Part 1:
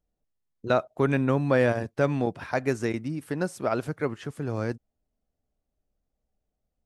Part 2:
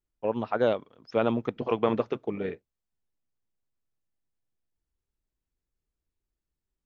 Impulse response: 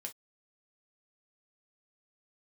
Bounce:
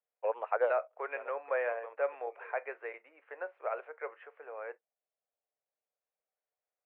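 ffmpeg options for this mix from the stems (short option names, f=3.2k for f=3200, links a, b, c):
-filter_complex "[0:a]volume=-10.5dB,asplit=3[a][b][c];[b]volume=-3dB[d];[1:a]volume=-2dB[e];[c]apad=whole_len=302386[f];[e][f]sidechaincompress=threshold=-51dB:ratio=4:attack=50:release=1320[g];[2:a]atrim=start_sample=2205[h];[d][h]afir=irnorm=-1:irlink=0[i];[a][g][i]amix=inputs=3:normalize=0,asuperpass=centerf=1100:order=12:qfactor=0.53"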